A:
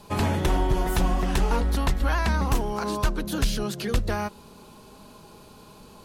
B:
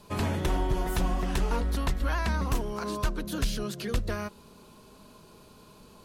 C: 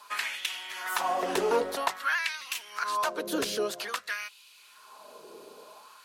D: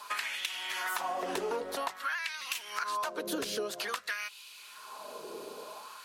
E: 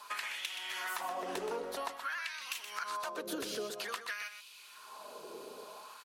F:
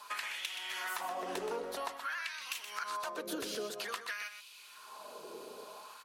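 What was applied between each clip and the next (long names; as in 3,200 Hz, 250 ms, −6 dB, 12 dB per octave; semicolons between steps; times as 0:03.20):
notch filter 820 Hz, Q 12; level −4.5 dB
auto-filter high-pass sine 0.51 Hz 400–2,700 Hz; level +3 dB
downward compressor 6 to 1, threshold −37 dBFS, peak gain reduction 15 dB; level +5 dB
single-tap delay 124 ms −9 dB; level −4.5 dB
hum removal 136.1 Hz, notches 17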